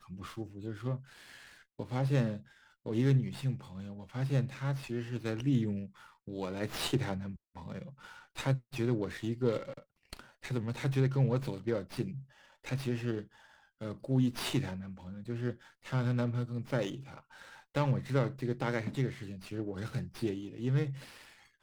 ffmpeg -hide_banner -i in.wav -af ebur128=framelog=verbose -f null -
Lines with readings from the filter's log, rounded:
Integrated loudness:
  I:         -34.8 LUFS
  Threshold: -45.6 LUFS
Loudness range:
  LRA:         2.9 LU
  Threshold: -55.3 LUFS
  LRA low:   -36.7 LUFS
  LRA high:  -33.8 LUFS